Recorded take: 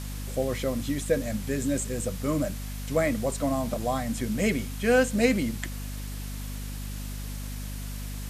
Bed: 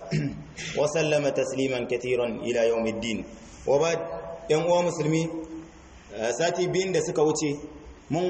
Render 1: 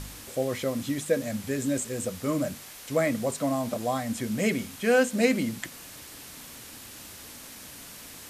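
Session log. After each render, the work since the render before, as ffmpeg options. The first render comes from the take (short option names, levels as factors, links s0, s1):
-af "bandreject=f=50:t=h:w=4,bandreject=f=100:t=h:w=4,bandreject=f=150:t=h:w=4,bandreject=f=200:t=h:w=4,bandreject=f=250:t=h:w=4"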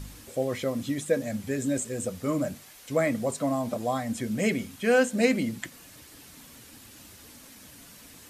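-af "afftdn=nr=7:nf=-45"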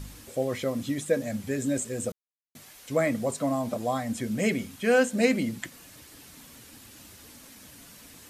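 -filter_complex "[0:a]asplit=3[s0][s1][s2];[s0]atrim=end=2.12,asetpts=PTS-STARTPTS,afade=t=out:st=2.116:d=0.004:c=hsin[s3];[s1]atrim=start=2.12:end=2.55,asetpts=PTS-STARTPTS,volume=0[s4];[s2]atrim=start=2.55,asetpts=PTS-STARTPTS,afade=t=in:d=0.004:c=hsin[s5];[s3][s4][s5]concat=n=3:v=0:a=1"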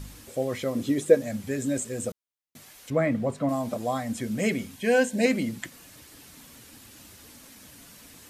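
-filter_complex "[0:a]asettb=1/sr,asplit=3[s0][s1][s2];[s0]atrim=end=0.754[s3];[s1]atrim=start=0.75:end=1.15,asetpts=PTS-STARTPTS,afade=t=in:d=0.004:c=qsin,afade=t=out:st=0.396:d=0.004:c=qsin,equalizer=f=400:t=o:w=0.77:g=12.5[s4];[s2]atrim=start=1.146[s5];[s3][s4]acrossfade=d=0.004:c1=hsin:c2=qsin[s6];[s6][s5]acrossfade=d=0.004:c1=qsin:c2=hsin,asettb=1/sr,asplit=3[s7][s8][s9];[s7]atrim=end=2.904[s10];[s8]atrim=start=2.9:end=3.49,asetpts=PTS-STARTPTS,afade=t=in:d=0.004:c=qsin,afade=t=out:st=0.586:d=0.004:c=qsin,bass=f=250:g=5,treble=f=4000:g=-14[s11];[s9]atrim=start=3.486[s12];[s10][s11]acrossfade=d=0.004:c1=hsin:c2=qsin[s13];[s13][s12]acrossfade=d=0.004:c1=qsin:c2=hsin,asettb=1/sr,asplit=3[s14][s15][s16];[s14]atrim=end=4.754[s17];[s15]atrim=start=4.75:end=5.26,asetpts=PTS-STARTPTS,afade=t=in:d=0.004:c=qsin,afade=t=out:st=0.506:d=0.004:c=qsin,asuperstop=centerf=1300:order=20:qfactor=3.7[s18];[s16]atrim=start=5.256[s19];[s17][s18]acrossfade=d=0.004:c1=hsin:c2=qsin[s20];[s20][s19]acrossfade=d=0.004:c1=qsin:c2=hsin"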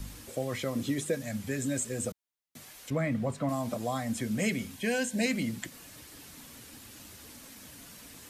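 -filter_complex "[0:a]acrossover=split=210|780|2600[s0][s1][s2][s3];[s1]acompressor=threshold=0.0178:ratio=6[s4];[s2]alimiter=level_in=2:limit=0.0631:level=0:latency=1:release=128,volume=0.501[s5];[s0][s4][s5][s3]amix=inputs=4:normalize=0"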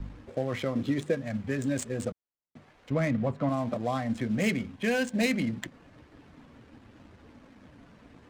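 -filter_complex "[0:a]asplit=2[s0][s1];[s1]aeval=exprs='val(0)*gte(abs(val(0)),0.00531)':c=same,volume=0.376[s2];[s0][s2]amix=inputs=2:normalize=0,adynamicsmooth=sensitivity=6.5:basefreq=1300"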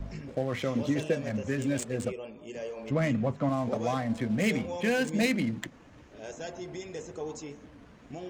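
-filter_complex "[1:a]volume=0.178[s0];[0:a][s0]amix=inputs=2:normalize=0"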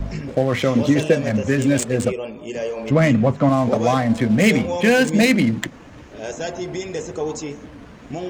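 -af "volume=3.98,alimiter=limit=0.708:level=0:latency=1"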